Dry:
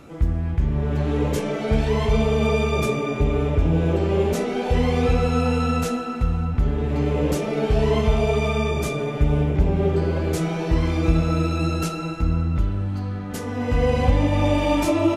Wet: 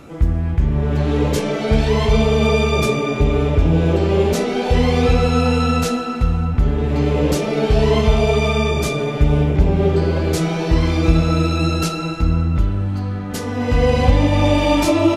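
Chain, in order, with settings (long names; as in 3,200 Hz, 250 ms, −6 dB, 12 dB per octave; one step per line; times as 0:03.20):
dynamic equaliser 4,400 Hz, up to +5 dB, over −48 dBFS, Q 1.4
level +4.5 dB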